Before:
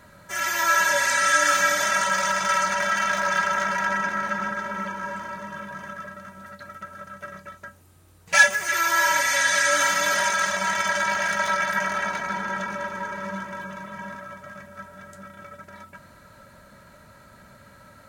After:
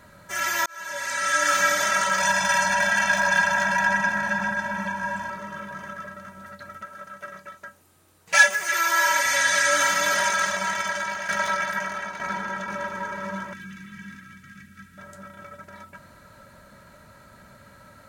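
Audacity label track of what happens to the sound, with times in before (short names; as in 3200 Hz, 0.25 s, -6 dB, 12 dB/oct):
0.660000	1.630000	fade in
2.200000	5.300000	comb 1.2 ms, depth 86%
6.820000	9.250000	HPF 280 Hz 6 dB/oct
10.380000	12.680000	tremolo saw down 1.1 Hz, depth 60%
13.530000	14.980000	Chebyshev band-stop 250–2000 Hz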